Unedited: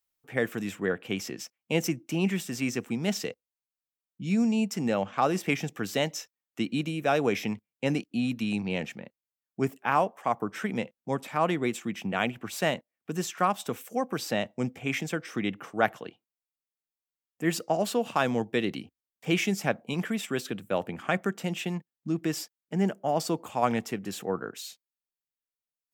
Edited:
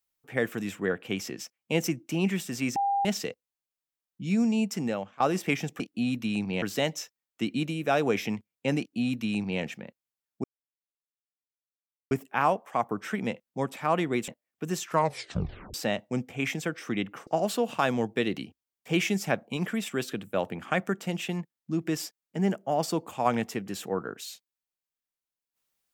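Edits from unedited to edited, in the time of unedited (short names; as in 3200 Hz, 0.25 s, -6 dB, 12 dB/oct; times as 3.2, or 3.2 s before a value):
2.76–3.05 bleep 799 Hz -23 dBFS
4.77–5.2 fade out, to -21 dB
7.97–8.79 copy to 5.8
9.62 insert silence 1.67 s
11.79–12.75 cut
13.33 tape stop 0.88 s
15.74–17.64 cut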